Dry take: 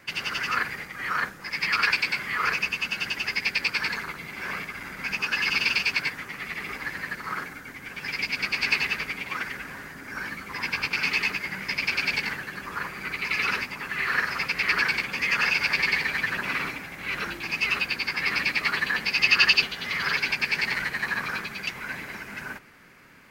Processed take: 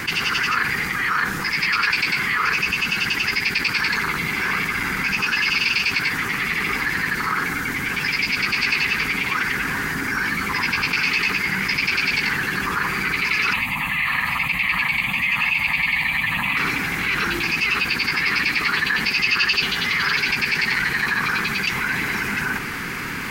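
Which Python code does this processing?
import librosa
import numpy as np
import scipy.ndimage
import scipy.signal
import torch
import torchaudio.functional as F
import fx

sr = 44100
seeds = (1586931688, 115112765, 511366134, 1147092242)

y = fx.fixed_phaser(x, sr, hz=1500.0, stages=6, at=(13.53, 16.57))
y = fx.peak_eq(y, sr, hz=600.0, db=-13.5, octaves=0.42)
y = fx.env_flatten(y, sr, amount_pct=70)
y = y * librosa.db_to_amplitude(-1.5)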